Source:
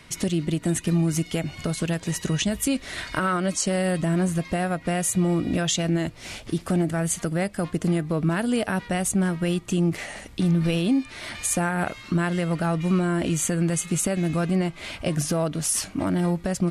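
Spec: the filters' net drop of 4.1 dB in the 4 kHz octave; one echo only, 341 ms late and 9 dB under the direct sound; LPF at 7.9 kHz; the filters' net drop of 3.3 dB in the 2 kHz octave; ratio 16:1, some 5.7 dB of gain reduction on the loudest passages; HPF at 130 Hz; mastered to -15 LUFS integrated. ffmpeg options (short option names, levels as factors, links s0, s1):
-af "highpass=130,lowpass=7900,equalizer=f=2000:t=o:g=-3.5,equalizer=f=4000:t=o:g=-4,acompressor=threshold=0.0631:ratio=16,aecho=1:1:341:0.355,volume=5.01"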